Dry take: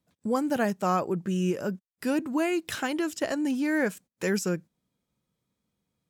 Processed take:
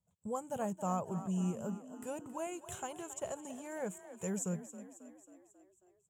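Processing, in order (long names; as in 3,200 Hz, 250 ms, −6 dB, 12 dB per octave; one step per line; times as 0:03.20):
drawn EQ curve 100 Hz 0 dB, 190 Hz −4 dB, 290 Hz −22 dB, 420 Hz −9 dB, 940 Hz −5 dB, 1,800 Hz −20 dB, 3,200 Hz −12 dB, 4,900 Hz −27 dB, 7,100 Hz +2 dB, 11,000 Hz −10 dB
on a send: echo with shifted repeats 271 ms, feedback 57%, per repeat +36 Hz, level −13 dB
on the sum: level −2.5 dB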